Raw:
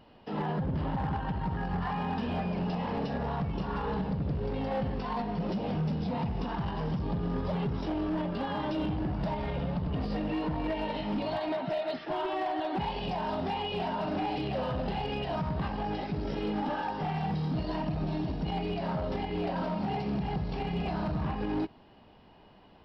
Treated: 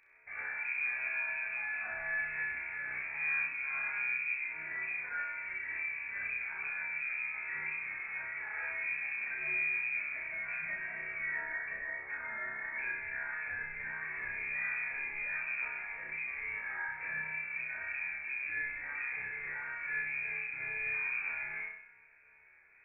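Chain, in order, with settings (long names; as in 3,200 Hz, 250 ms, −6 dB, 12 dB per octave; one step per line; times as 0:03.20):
tuned comb filter 71 Hz, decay 0.42 s, harmonics all, mix 90%
voice inversion scrambler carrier 2,500 Hz
flutter between parallel walls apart 5.5 metres, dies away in 0.68 s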